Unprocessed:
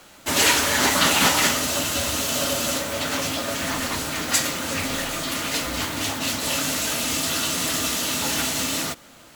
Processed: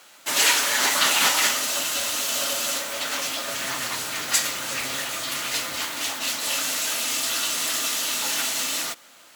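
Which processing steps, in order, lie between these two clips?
3.47–5.77 s: octave divider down 1 oct, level +2 dB; high-pass 1 kHz 6 dB/octave

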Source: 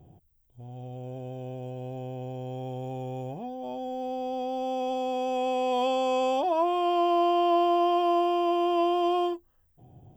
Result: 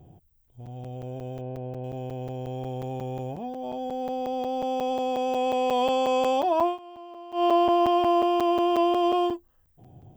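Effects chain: 1.41–1.84 s: low-pass 1.9 kHz 12 dB/octave; 6.66–7.44 s: dip -21.5 dB, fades 0.12 s; crackling interface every 0.18 s, samples 256, zero, from 0.30 s; trim +2.5 dB

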